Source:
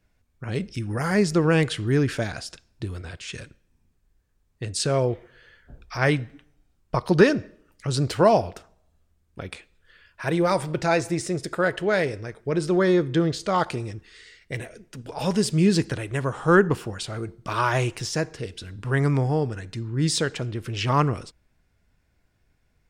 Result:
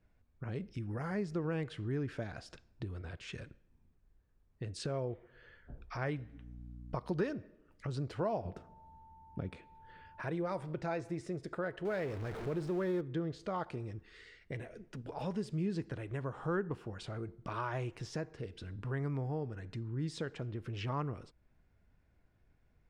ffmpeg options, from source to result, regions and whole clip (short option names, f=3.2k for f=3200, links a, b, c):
-filter_complex "[0:a]asettb=1/sr,asplit=3[a][b][c];[a]atrim=end=6.184[d];[b]atrim=start=6.18:end=7.33,asetpts=PTS-STARTPTS,afade=t=in:d=0.004:c=qsin,afade=t=out:st=1.146:d=0.004:c=qsin,highshelf=f=5.1k:g=7,aeval=exprs='val(0)+0.00631*(sin(2*PI*60*n/s)+sin(2*PI*2*60*n/s)/2+sin(2*PI*3*60*n/s)/3+sin(2*PI*4*60*n/s)/4+sin(2*PI*5*60*n/s)/5)':c=same[e];[c]atrim=start=7.326[f];[d][e]acrossfade=d=0.004:c1=hsin:c2=qsin[g];[g][f]acrossfade=d=0.004:c1=qsin:c2=hsin,asettb=1/sr,asplit=3[h][i][j];[h]atrim=end=8.454[k];[i]atrim=start=8.45:end=10.23,asetpts=PTS-STARTPTS,afade=t=in:d=0.004:c=qsin,afade=t=out:st=1.776:d=0.004:c=qsin,equalizer=f=160:t=o:w=2.8:g=11,aeval=exprs='val(0)+0.00251*sin(2*PI*890*n/s)':c=same[l];[j]atrim=start=10.226[m];[k][l]acrossfade=d=0.004:c1=hsin:c2=qsin[n];[n][m]acrossfade=d=0.004:c1=qsin:c2=hsin,asettb=1/sr,asplit=3[o][p][q];[o]atrim=end=11.854[r];[p]atrim=start=11.85:end=13.01,asetpts=PTS-STARTPTS,afade=t=in:d=0.004:c=qsin,afade=t=out:st=1.156:d=0.004:c=qsin,aeval=exprs='val(0)+0.5*0.0447*sgn(val(0))':c=same,acrusher=bits=6:mode=log:mix=0:aa=0.000001[s];[q]atrim=start=13.006[t];[r][s]acrossfade=d=0.004:c1=hsin:c2=qsin[u];[u][t]acrossfade=d=0.004:c1=qsin:c2=hsin,lowpass=f=1.5k:p=1,acompressor=threshold=-41dB:ratio=2,volume=-2.5dB"